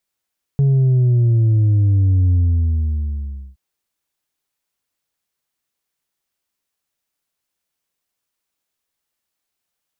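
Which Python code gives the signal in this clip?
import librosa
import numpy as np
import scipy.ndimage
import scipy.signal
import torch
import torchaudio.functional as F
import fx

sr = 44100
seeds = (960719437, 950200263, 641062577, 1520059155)

y = fx.sub_drop(sr, level_db=-11.5, start_hz=140.0, length_s=2.97, drive_db=3.0, fade_s=1.24, end_hz=65.0)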